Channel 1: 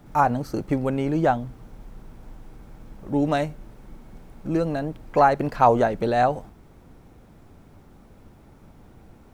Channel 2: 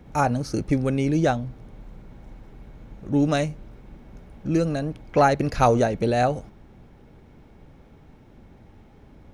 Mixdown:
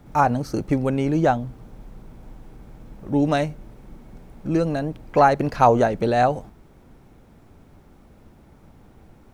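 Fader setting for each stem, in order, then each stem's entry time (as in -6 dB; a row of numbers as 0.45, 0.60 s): -1.0, -8.5 dB; 0.00, 0.00 s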